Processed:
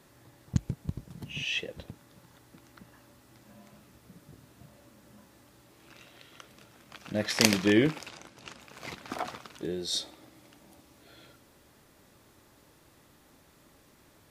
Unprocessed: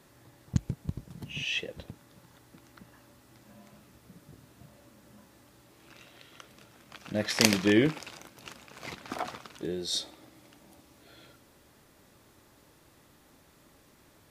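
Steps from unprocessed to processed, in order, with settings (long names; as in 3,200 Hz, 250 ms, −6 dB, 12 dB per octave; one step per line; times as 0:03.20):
0:08.09–0:08.60: low-pass filter 8,600 Hz 12 dB per octave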